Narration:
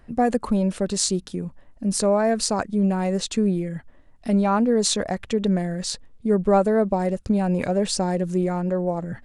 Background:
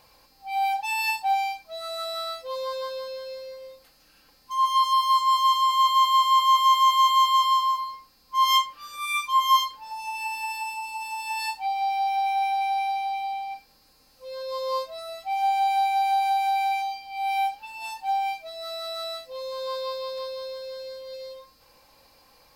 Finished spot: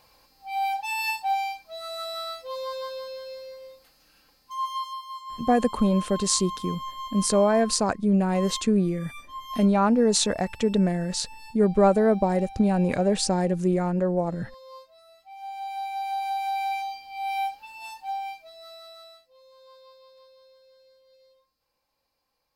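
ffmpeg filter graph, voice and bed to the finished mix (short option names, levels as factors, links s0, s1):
-filter_complex "[0:a]adelay=5300,volume=0.944[s0];[1:a]volume=4.22,afade=t=out:st=4.17:d=0.85:silence=0.16788,afade=t=in:st=15.34:d=1.39:silence=0.188365,afade=t=out:st=17.54:d=1.75:silence=0.125893[s1];[s0][s1]amix=inputs=2:normalize=0"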